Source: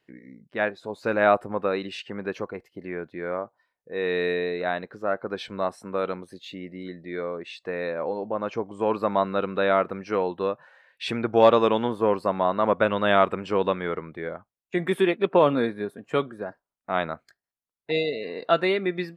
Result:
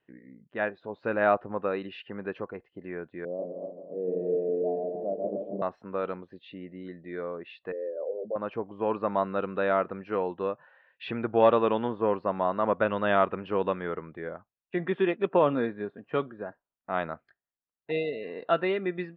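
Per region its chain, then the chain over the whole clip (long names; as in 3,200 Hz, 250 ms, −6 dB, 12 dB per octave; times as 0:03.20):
0:03.25–0:05.62: feedback delay that plays each chunk backwards 137 ms, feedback 60%, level −2.5 dB + elliptic band-pass filter 140–640 Hz + single-tap delay 165 ms −9 dB
0:07.72–0:08.36: spectral envelope exaggerated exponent 3 + high-pass filter 160 Hz + double-tracking delay 15 ms −9 dB
whole clip: low-pass filter 3,000 Hz 24 dB per octave; notch filter 2,200 Hz, Q 9.7; level −4 dB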